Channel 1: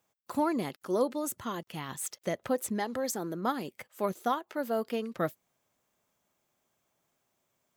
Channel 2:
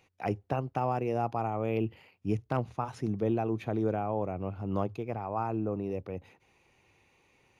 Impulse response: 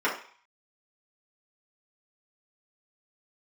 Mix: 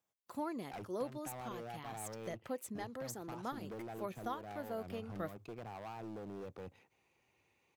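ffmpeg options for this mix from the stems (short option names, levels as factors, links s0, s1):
-filter_complex "[0:a]volume=0.266,asplit=2[s0][s1];[1:a]highpass=f=100:p=1,acompressor=threshold=0.02:ratio=6,aeval=exprs='0.0126*(cos(1*acos(clip(val(0)/0.0126,-1,1)))-cos(1*PI/2))+0.000794*(cos(7*acos(clip(val(0)/0.0126,-1,1)))-cos(7*PI/2))':c=same,adelay=500,volume=0.596[s2];[s1]apad=whole_len=357146[s3];[s2][s3]sidechaincompress=threshold=0.00891:ratio=8:attack=16:release=309[s4];[s0][s4]amix=inputs=2:normalize=0"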